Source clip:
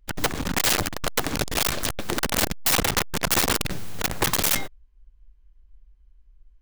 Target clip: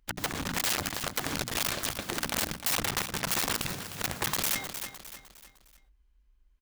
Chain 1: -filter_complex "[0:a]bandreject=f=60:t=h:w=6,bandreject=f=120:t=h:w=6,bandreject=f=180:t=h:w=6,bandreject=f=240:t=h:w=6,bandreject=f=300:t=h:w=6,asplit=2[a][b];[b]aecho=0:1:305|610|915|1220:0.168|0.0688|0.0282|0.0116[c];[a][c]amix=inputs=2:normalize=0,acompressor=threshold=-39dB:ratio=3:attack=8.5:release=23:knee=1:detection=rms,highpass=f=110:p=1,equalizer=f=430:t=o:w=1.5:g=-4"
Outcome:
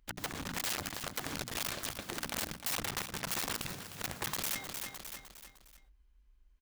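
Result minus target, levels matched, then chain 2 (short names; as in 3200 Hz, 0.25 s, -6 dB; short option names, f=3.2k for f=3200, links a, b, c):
compressor: peak gain reduction +6.5 dB
-filter_complex "[0:a]bandreject=f=60:t=h:w=6,bandreject=f=120:t=h:w=6,bandreject=f=180:t=h:w=6,bandreject=f=240:t=h:w=6,bandreject=f=300:t=h:w=6,asplit=2[a][b];[b]aecho=0:1:305|610|915|1220:0.168|0.0688|0.0282|0.0116[c];[a][c]amix=inputs=2:normalize=0,acompressor=threshold=-29dB:ratio=3:attack=8.5:release=23:knee=1:detection=rms,highpass=f=110:p=1,equalizer=f=430:t=o:w=1.5:g=-4"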